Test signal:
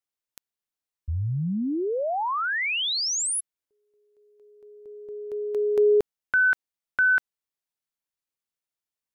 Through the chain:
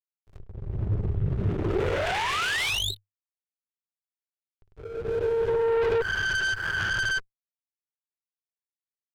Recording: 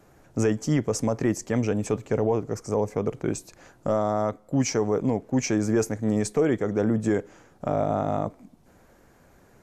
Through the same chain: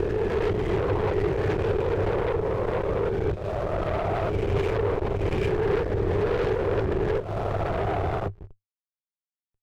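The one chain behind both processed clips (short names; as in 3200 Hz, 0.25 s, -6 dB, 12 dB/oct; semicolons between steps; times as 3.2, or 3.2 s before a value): spectral swells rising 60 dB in 1.90 s; frequency shift +41 Hz; LPC vocoder at 8 kHz whisper; sample leveller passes 1; backlash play -32 dBFS; added harmonics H 5 -15 dB, 6 -13 dB, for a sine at -8 dBFS; compressor 4:1, threshold -27 dBFS; thirty-one-band EQ 100 Hz +10 dB, 250 Hz -10 dB, 400 Hz +8 dB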